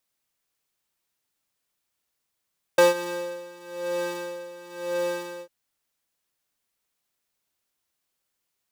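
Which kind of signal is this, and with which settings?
synth patch with tremolo F4, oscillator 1 triangle, oscillator 2 square, interval +7 st, detune 8 cents, oscillator 2 level -5.5 dB, sub -1 dB, noise -22.5 dB, filter highpass, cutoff 460 Hz, Q 1.8, filter envelope 0.5 oct, attack 5.6 ms, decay 0.15 s, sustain -20.5 dB, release 0.07 s, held 2.63 s, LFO 0.99 Hz, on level 15 dB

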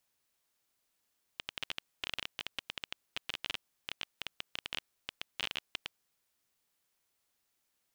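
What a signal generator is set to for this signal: random clicks 15/s -18.5 dBFS 4.65 s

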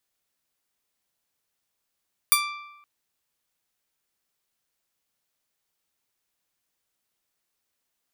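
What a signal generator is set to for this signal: plucked string D6, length 0.52 s, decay 1.00 s, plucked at 0.29, bright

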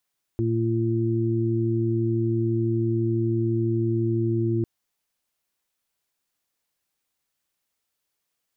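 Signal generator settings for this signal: steady additive tone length 4.25 s, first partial 114 Hz, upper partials -6.5/-0.5 dB, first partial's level -23.5 dB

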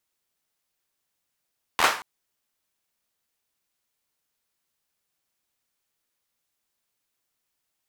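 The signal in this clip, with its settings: hand clap length 0.23 s, bursts 5, apart 12 ms, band 1100 Hz, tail 0.40 s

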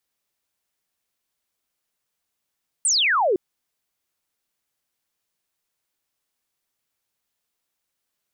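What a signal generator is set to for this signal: laser zap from 9300 Hz, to 340 Hz, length 0.51 s sine, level -16.5 dB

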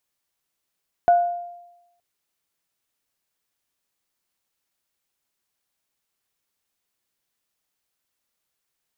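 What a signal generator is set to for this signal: sine partials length 0.92 s, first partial 699 Hz, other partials 1470 Hz, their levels -19.5 dB, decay 0.96 s, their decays 0.49 s, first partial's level -10 dB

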